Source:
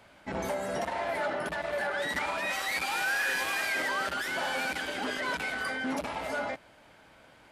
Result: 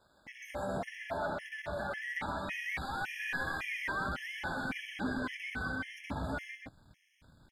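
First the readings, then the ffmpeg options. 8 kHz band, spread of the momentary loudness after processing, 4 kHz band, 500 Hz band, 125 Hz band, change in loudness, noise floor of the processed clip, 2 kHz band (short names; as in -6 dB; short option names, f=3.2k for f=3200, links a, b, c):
-14.5 dB, 6 LU, -10.5 dB, -7.5 dB, +3.5 dB, -6.5 dB, -69 dBFS, -6.5 dB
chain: -filter_complex "[0:a]aeval=exprs='sgn(val(0))*max(abs(val(0))-0.00126,0)':c=same,asubboost=boost=8.5:cutoff=180,acrossover=split=3100[a][b];[b]acompressor=threshold=-51dB:ratio=4:attack=1:release=60[c];[a][c]amix=inputs=2:normalize=0,aecho=1:1:129:0.596,afftfilt=real='re*gt(sin(2*PI*1.8*pts/sr)*(1-2*mod(floor(b*sr/1024/1700),2)),0)':imag='im*gt(sin(2*PI*1.8*pts/sr)*(1-2*mod(floor(b*sr/1024/1700),2)),0)':win_size=1024:overlap=0.75,volume=-3dB"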